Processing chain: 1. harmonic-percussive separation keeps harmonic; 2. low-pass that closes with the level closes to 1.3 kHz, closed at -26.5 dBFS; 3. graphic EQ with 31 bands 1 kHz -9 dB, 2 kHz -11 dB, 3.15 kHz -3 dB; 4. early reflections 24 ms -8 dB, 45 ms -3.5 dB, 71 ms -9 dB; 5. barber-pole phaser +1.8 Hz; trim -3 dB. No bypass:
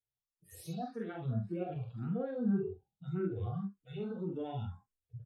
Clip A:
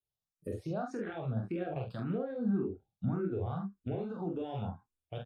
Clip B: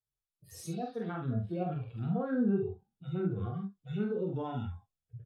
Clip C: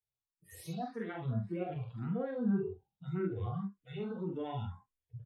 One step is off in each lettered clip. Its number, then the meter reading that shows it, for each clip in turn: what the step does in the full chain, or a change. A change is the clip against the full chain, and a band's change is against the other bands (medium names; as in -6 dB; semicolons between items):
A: 1, 2 kHz band +3.0 dB; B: 5, momentary loudness spread change +1 LU; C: 3, 2 kHz band +4.0 dB